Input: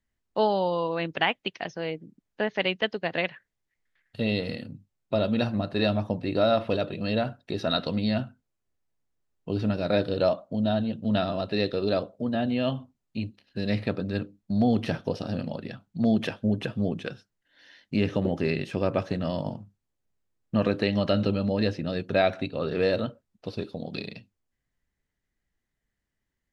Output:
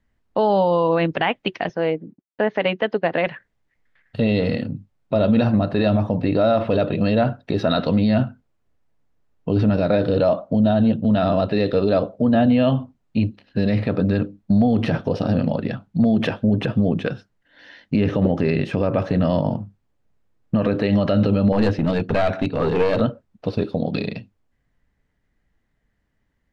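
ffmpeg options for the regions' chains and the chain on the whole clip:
-filter_complex "[0:a]asettb=1/sr,asplit=3[a][b][c];[a]atrim=end=1.694[d];[b]atrim=start=1.69:end=3.27,asetpts=PTS-STARTPTS,afade=t=in:d=0.004:c=qsin,afade=t=out:st=1.576:d=0.004:c=qsin,highpass=f=240:p=1,agate=range=-33dB:threshold=-56dB:ratio=3:release=100:detection=peak,highshelf=f=3.1k:g=-9[e];[c]atrim=start=3.266[f];[d][e]acrossfade=d=0.004:c1=hsin:c2=qsin[g];[g][f]acrossfade=d=0.004:c1=qsin:c2=hsin,asettb=1/sr,asplit=3[h][i][j];[h]atrim=end=21.524[k];[i]atrim=start=21.52:end=23.01,asetpts=PTS-STARTPTS,afade=t=in:d=0.004:c=qsin,afade=t=out:st=1.486:d=0.004:c=qsin,bandreject=f=540:w=10,aeval=exprs='clip(val(0),-1,0.0335)':c=same[l];[j]atrim=start=23.006[m];[k][l]acrossfade=d=0.004:c1=hsin:c2=qsin[n];[n][m]acrossfade=d=0.004:c1=qsin:c2=hsin,lowpass=f=1.6k:p=1,bandreject=f=370:w=12,alimiter=level_in=21dB:limit=-1dB:release=50:level=0:latency=1,volume=-8dB"

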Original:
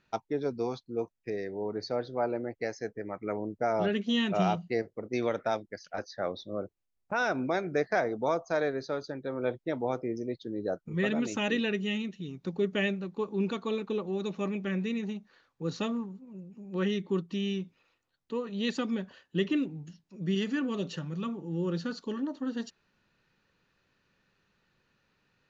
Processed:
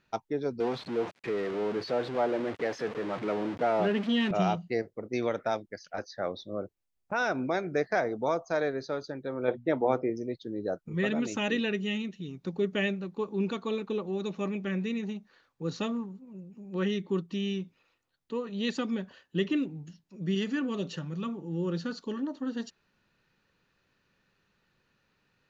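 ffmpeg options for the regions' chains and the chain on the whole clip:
-filter_complex "[0:a]asettb=1/sr,asplit=3[a][b][c];[a]atrim=end=0.604[d];[b]atrim=start=0.6:end=4.31,asetpts=PTS-STARTPTS,afade=t=in:d=0.004:c=qsin,afade=t=out:st=3.706:d=0.004:c=qsin,aeval=exprs='val(0)+0.5*0.0251*sgn(val(0))':c=same,highpass=150,lowpass=3.2k[e];[c]atrim=start=4.306[f];[d][e]acrossfade=d=0.004:c1=hsin:c2=qsin[g];[g][f]acrossfade=d=0.004:c1=qsin:c2=hsin,asettb=1/sr,asplit=3[h][i][j];[h]atrim=end=9.484[k];[i]atrim=start=9.48:end=10.1,asetpts=PTS-STARTPTS,afade=t=in:d=0.004:c=qsin,afade=t=out:st=0.616:d=0.004:c=qsin,bass=f=250:g=-3,treble=f=4k:g=-12,acontrast=39,bandreject=f=60:t=h:w=6,bandreject=f=120:t=h:w=6,bandreject=f=180:t=h:w=6,bandreject=f=240:t=h:w=6[l];[j]atrim=start=10.096[m];[k][l]acrossfade=d=0.004:c1=hsin:c2=qsin[n];[n][m]acrossfade=d=0.004:c1=qsin:c2=hsin"

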